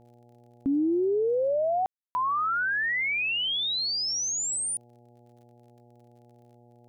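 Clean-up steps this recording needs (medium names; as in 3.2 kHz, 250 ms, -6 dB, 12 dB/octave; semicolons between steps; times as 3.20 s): de-click; de-hum 119.9 Hz, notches 7; room tone fill 1.86–2.15 s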